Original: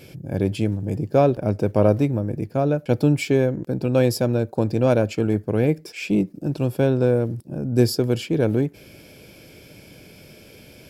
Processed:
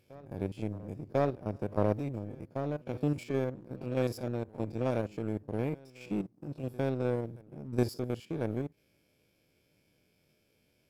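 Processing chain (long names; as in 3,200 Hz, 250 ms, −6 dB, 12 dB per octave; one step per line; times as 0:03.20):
spectrum averaged block by block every 50 ms
power curve on the samples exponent 1.4
backwards echo 1,046 ms −23 dB
level −8.5 dB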